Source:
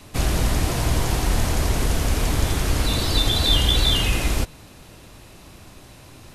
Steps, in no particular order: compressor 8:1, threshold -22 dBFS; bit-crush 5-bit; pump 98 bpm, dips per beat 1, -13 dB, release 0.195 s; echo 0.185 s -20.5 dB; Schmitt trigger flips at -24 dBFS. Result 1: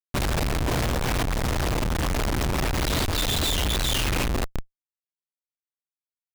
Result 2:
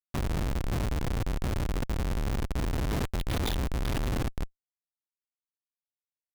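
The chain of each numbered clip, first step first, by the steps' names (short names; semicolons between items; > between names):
echo > pump > bit-crush > Schmitt trigger > compressor; bit-crush > echo > compressor > pump > Schmitt trigger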